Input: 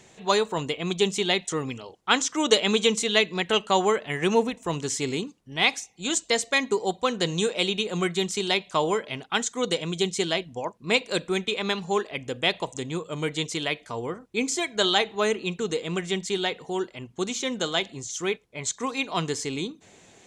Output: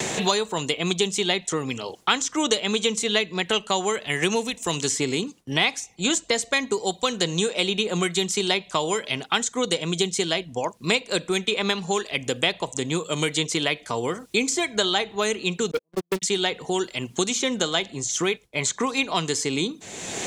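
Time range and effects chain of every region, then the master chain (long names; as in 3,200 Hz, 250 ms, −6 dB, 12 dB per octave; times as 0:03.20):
0:15.71–0:16.22: noise gate −25 dBFS, range −43 dB + linear-phase brick-wall low-pass 1,200 Hz + leveller curve on the samples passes 3
whole clip: noise gate with hold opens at −47 dBFS; high-shelf EQ 4,500 Hz +5.5 dB; multiband upward and downward compressor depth 100%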